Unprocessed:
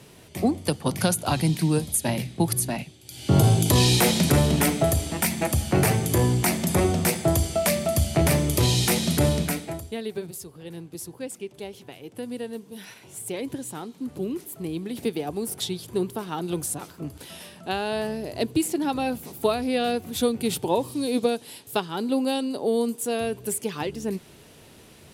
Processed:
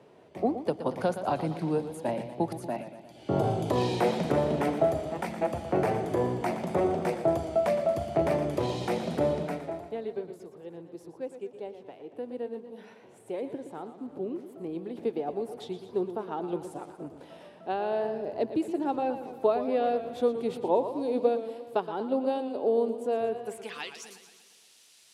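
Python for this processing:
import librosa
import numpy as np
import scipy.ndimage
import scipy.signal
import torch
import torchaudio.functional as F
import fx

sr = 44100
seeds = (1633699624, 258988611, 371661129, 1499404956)

y = fx.filter_sweep_bandpass(x, sr, from_hz=590.0, to_hz=6000.0, start_s=23.37, end_s=24.07, q=1.1)
y = fx.echo_warbled(y, sr, ms=117, feedback_pct=59, rate_hz=2.8, cents=92, wet_db=-11)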